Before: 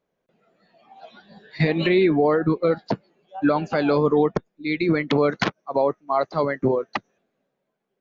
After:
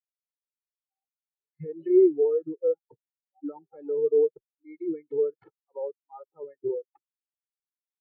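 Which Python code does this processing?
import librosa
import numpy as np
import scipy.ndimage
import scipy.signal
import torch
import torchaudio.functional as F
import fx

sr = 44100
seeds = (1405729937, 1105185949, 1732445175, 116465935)

y = fx.high_shelf(x, sr, hz=2200.0, db=-4.5)
y = y + 0.78 * np.pad(y, (int(2.3 * sr / 1000.0), 0))[:len(y)]
y = fx.spectral_expand(y, sr, expansion=2.5)
y = y * librosa.db_to_amplitude(-4.5)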